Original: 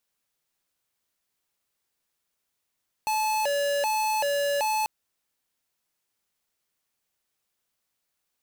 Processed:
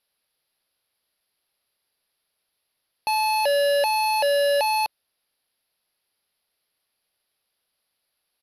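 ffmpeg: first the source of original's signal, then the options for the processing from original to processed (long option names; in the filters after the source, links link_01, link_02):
-f lavfi -i "aevalsrc='0.0531*(2*lt(mod((717.5*t+147.5/1.3*(0.5-abs(mod(1.3*t,1)-0.5))),1),0.5)-1)':duration=1.79:sample_rate=44100"
-af "firequalizer=gain_entry='entry(250,0);entry(570,6);entry(1000,2);entry(4800,8);entry(7700,-29);entry(11000,12);entry(16000,-24)':delay=0.05:min_phase=1"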